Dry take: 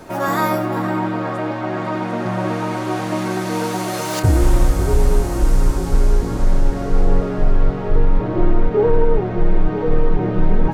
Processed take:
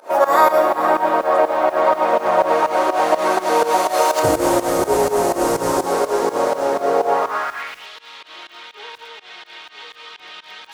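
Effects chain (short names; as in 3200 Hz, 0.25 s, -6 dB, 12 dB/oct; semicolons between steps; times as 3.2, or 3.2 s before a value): 4.22–5.86 tone controls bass +12 dB, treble +3 dB; on a send: thinning echo 69 ms, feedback 80%, high-pass 150 Hz, level -14 dB; on the sum: high-pass sweep 540 Hz -> 3400 Hz, 7–7.88; in parallel at +1 dB: vocal rider 0.5 s; on the sum: bell 1000 Hz +4.5 dB 0.7 oct; pump 124 bpm, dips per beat 2, -23 dB, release 0.133 s; lo-fi delay 0.118 s, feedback 35%, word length 5-bit, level -14 dB; gain -3 dB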